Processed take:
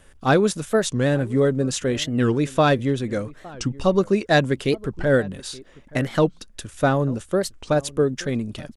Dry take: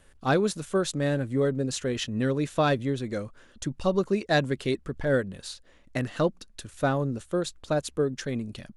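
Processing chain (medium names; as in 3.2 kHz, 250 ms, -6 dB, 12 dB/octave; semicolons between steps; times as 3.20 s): band-stop 4.2 kHz, Q 13; echo from a far wall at 150 m, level -21 dB; warped record 45 rpm, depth 250 cents; trim +6 dB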